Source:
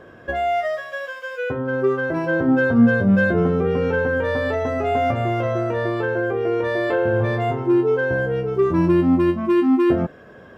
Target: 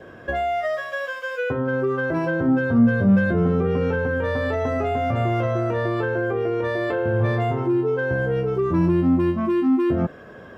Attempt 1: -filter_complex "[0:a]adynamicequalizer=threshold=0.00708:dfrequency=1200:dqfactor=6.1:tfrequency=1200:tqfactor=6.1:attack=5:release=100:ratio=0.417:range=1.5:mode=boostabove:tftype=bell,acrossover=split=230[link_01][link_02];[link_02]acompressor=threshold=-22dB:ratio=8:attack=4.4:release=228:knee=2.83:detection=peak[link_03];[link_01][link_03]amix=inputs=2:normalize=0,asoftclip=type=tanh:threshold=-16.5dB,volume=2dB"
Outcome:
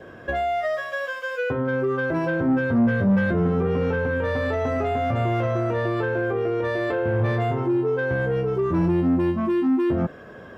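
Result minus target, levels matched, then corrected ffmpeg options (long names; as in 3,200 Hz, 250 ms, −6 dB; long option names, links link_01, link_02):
soft clipping: distortion +11 dB
-filter_complex "[0:a]adynamicequalizer=threshold=0.00708:dfrequency=1200:dqfactor=6.1:tfrequency=1200:tqfactor=6.1:attack=5:release=100:ratio=0.417:range=1.5:mode=boostabove:tftype=bell,acrossover=split=230[link_01][link_02];[link_02]acompressor=threshold=-22dB:ratio=8:attack=4.4:release=228:knee=2.83:detection=peak[link_03];[link_01][link_03]amix=inputs=2:normalize=0,asoftclip=type=tanh:threshold=-8.5dB,volume=2dB"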